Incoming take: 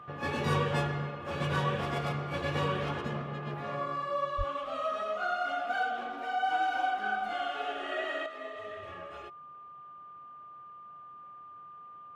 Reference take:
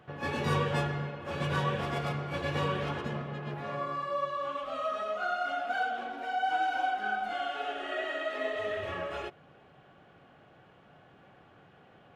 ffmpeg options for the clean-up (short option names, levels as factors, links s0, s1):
-filter_complex "[0:a]bandreject=f=1200:w=30,asplit=3[s0][s1][s2];[s0]afade=t=out:st=4.37:d=0.02[s3];[s1]highpass=f=140:w=0.5412,highpass=f=140:w=1.3066,afade=t=in:st=4.37:d=0.02,afade=t=out:st=4.49:d=0.02[s4];[s2]afade=t=in:st=4.49:d=0.02[s5];[s3][s4][s5]amix=inputs=3:normalize=0,asetnsamples=n=441:p=0,asendcmd='8.26 volume volume 9dB',volume=1"